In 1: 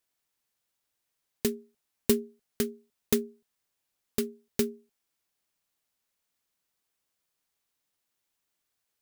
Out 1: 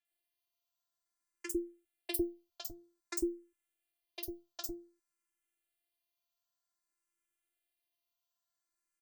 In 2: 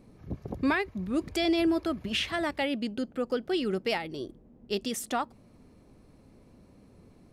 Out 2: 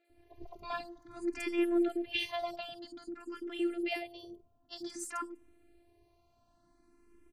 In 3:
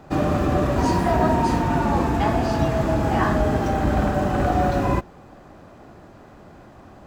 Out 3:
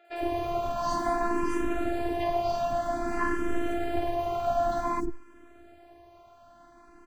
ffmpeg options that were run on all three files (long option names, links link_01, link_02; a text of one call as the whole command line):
ffmpeg -i in.wav -filter_complex "[0:a]afftfilt=real='hypot(re,im)*cos(PI*b)':imag='0':win_size=512:overlap=0.75,acrossover=split=510|5500[link_01][link_02][link_03];[link_03]adelay=50[link_04];[link_01]adelay=100[link_05];[link_05][link_02][link_04]amix=inputs=3:normalize=0,asplit=2[link_06][link_07];[link_07]afreqshift=0.53[link_08];[link_06][link_08]amix=inputs=2:normalize=1" out.wav